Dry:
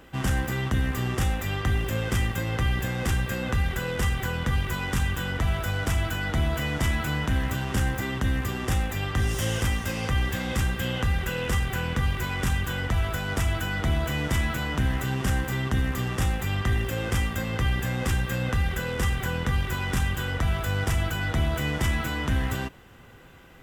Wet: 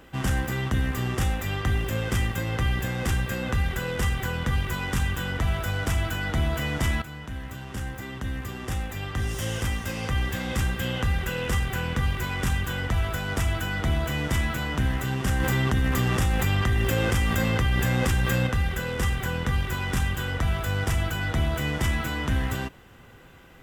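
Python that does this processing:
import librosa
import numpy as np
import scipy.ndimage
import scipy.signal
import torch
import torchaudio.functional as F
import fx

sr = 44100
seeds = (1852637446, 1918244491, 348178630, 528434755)

y = fx.env_flatten(x, sr, amount_pct=70, at=(15.4, 18.47))
y = fx.edit(y, sr, fx.fade_in_from(start_s=7.02, length_s=3.73, floor_db=-12.5), tone=tone)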